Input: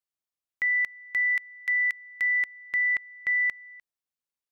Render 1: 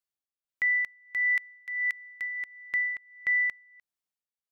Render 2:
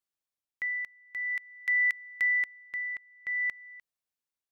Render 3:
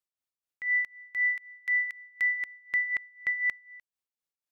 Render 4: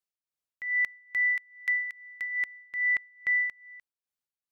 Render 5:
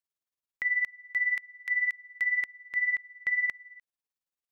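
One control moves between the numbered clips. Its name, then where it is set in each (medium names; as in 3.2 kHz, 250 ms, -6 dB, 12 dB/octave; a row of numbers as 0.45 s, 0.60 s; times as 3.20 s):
tremolo, rate: 1.5 Hz, 0.5 Hz, 4 Hz, 2.4 Hz, 18 Hz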